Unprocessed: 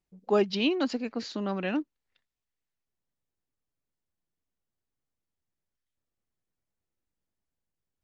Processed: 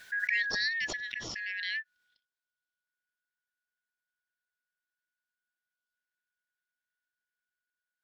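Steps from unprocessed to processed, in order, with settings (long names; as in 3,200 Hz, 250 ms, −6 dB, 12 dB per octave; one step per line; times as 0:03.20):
band-splitting scrambler in four parts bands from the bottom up 4123
parametric band 3,800 Hz +5 dB 1.1 octaves
background raised ahead of every attack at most 21 dB per second
level −8.5 dB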